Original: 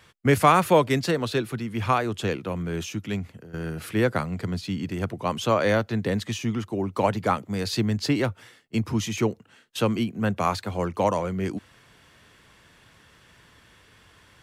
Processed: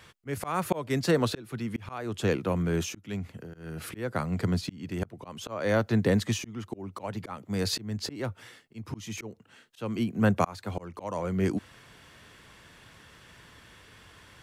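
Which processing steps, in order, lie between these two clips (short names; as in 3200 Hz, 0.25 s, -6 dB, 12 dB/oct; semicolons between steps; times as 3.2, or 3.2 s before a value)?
auto swell 0.455 s; dynamic EQ 3000 Hz, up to -4 dB, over -47 dBFS, Q 1.1; gain +2 dB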